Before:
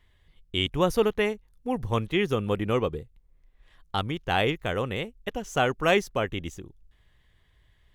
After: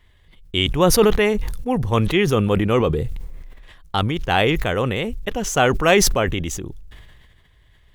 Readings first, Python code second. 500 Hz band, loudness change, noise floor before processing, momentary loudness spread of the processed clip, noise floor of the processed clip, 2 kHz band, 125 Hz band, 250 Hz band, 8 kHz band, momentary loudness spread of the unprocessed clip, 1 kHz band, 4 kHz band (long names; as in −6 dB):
+7.5 dB, +8.0 dB, −63 dBFS, 11 LU, −54 dBFS, +7.0 dB, +9.5 dB, +8.5 dB, +19.0 dB, 11 LU, +7.0 dB, +8.0 dB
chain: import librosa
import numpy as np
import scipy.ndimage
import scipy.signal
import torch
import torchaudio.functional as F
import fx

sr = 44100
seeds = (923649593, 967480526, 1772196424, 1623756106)

y = fx.sustainer(x, sr, db_per_s=31.0)
y = F.gain(torch.from_numpy(y), 6.5).numpy()